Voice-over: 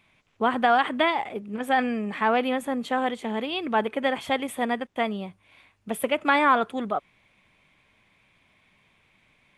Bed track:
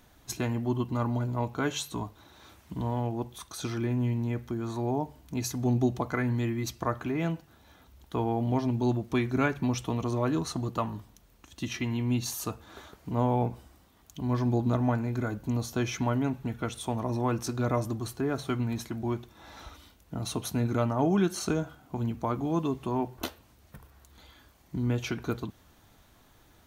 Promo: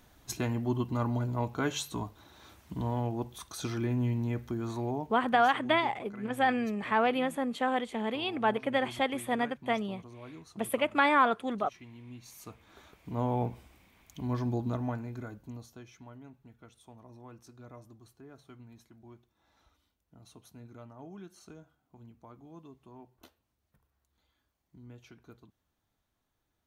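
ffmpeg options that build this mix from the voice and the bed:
-filter_complex "[0:a]adelay=4700,volume=-4dB[a];[1:a]volume=14.5dB,afade=t=out:st=4.7:d=0.71:silence=0.125893,afade=t=in:st=12.23:d=1.18:silence=0.158489,afade=t=out:st=14.21:d=1.64:silence=0.11885[b];[a][b]amix=inputs=2:normalize=0"

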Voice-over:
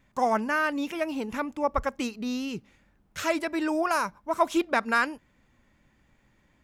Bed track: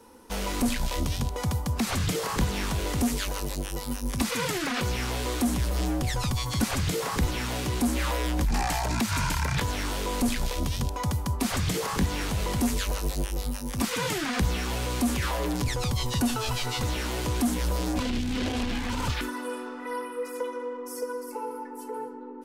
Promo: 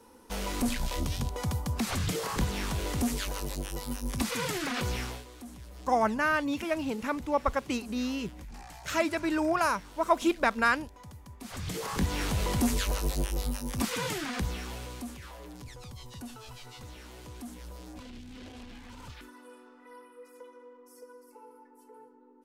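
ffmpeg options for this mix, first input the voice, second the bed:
-filter_complex "[0:a]adelay=5700,volume=-1dB[a];[1:a]volume=15.5dB,afade=t=out:st=4.97:d=0.28:silence=0.149624,afade=t=in:st=11.39:d=0.85:silence=0.112202,afade=t=out:st=13.46:d=1.72:silence=0.149624[b];[a][b]amix=inputs=2:normalize=0"

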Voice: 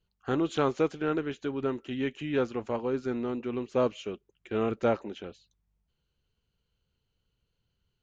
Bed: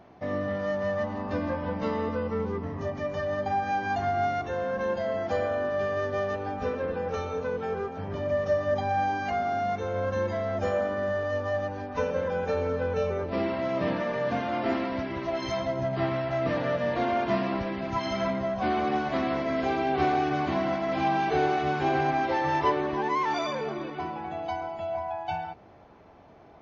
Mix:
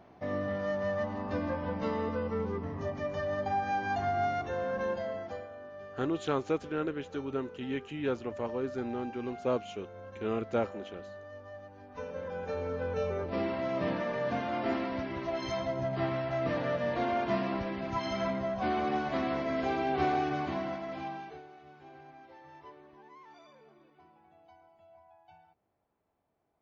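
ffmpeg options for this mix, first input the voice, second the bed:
-filter_complex "[0:a]adelay=5700,volume=-4dB[a];[1:a]volume=10.5dB,afade=t=out:st=4.83:d=0.64:silence=0.188365,afade=t=in:st=11.71:d=1.46:silence=0.199526,afade=t=out:st=20.16:d=1.27:silence=0.0707946[b];[a][b]amix=inputs=2:normalize=0"

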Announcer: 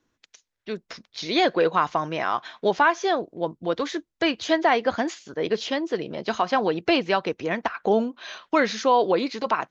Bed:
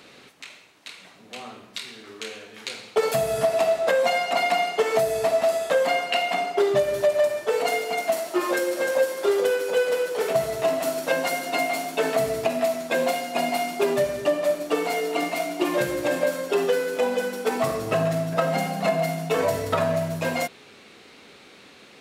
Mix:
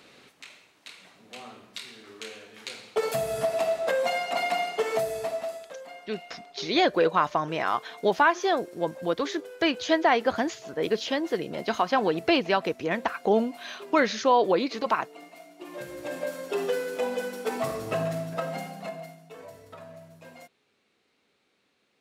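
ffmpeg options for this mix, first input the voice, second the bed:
-filter_complex "[0:a]adelay=5400,volume=-1.5dB[a];[1:a]volume=11dB,afade=t=out:st=4.94:d=0.8:silence=0.149624,afade=t=in:st=15.57:d=1.14:silence=0.158489,afade=t=out:st=18.02:d=1.18:silence=0.141254[b];[a][b]amix=inputs=2:normalize=0"

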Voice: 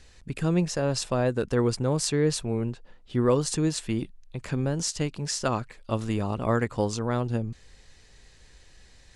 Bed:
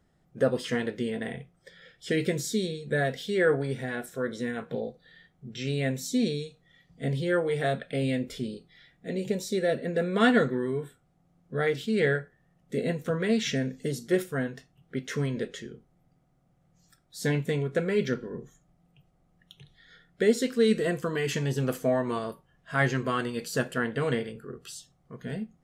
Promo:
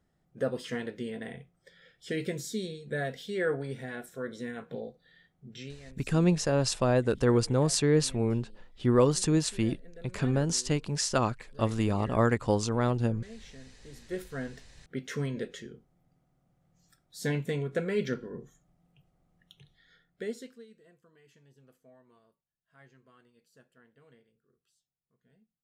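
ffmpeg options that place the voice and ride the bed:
-filter_complex "[0:a]adelay=5700,volume=0dB[a];[1:a]volume=13dB,afade=t=out:st=5.56:d=0.21:silence=0.149624,afade=t=in:st=13.85:d=0.86:silence=0.112202,afade=t=out:st=19.37:d=1.29:silence=0.0334965[b];[a][b]amix=inputs=2:normalize=0"

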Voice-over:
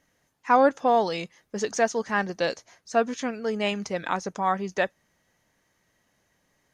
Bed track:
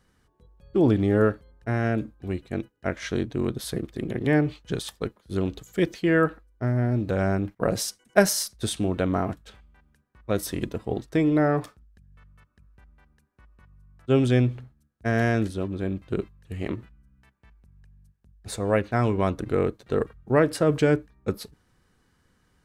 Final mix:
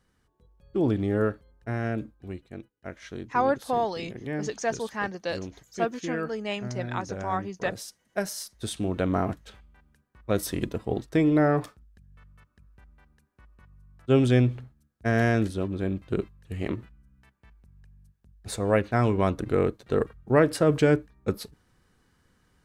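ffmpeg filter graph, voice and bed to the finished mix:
-filter_complex "[0:a]adelay=2850,volume=-5dB[a];[1:a]volume=6.5dB,afade=t=out:st=2.03:d=0.5:silence=0.473151,afade=t=in:st=8.31:d=0.92:silence=0.281838[b];[a][b]amix=inputs=2:normalize=0"

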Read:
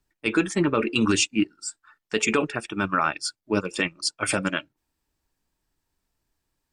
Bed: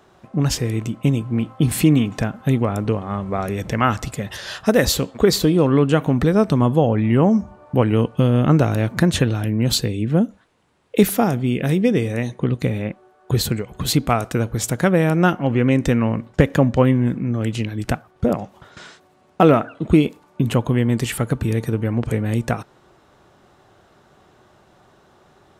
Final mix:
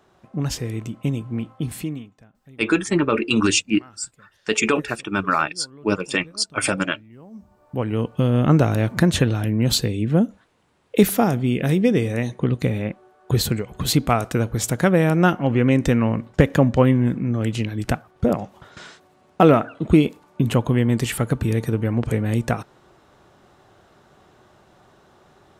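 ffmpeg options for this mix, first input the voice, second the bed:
-filter_complex "[0:a]adelay=2350,volume=3dB[a];[1:a]volume=23.5dB,afade=t=out:st=1.36:d=0.78:silence=0.0630957,afade=t=in:st=7.3:d=1.24:silence=0.0354813[b];[a][b]amix=inputs=2:normalize=0"

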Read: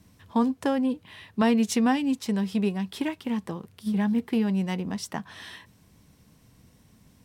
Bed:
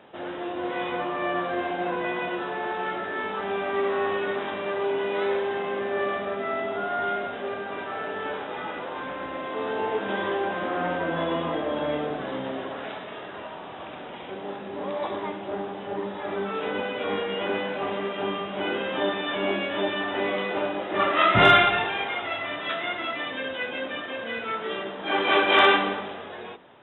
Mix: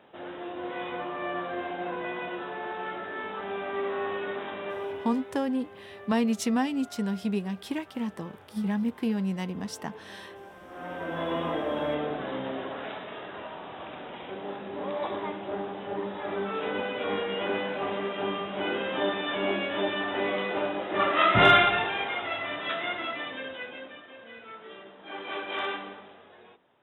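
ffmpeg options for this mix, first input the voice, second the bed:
-filter_complex "[0:a]adelay=4700,volume=-3.5dB[a];[1:a]volume=12dB,afade=t=out:st=4.68:d=0.56:silence=0.199526,afade=t=in:st=10.68:d=0.76:silence=0.133352,afade=t=out:st=22.92:d=1.09:silence=0.237137[b];[a][b]amix=inputs=2:normalize=0"

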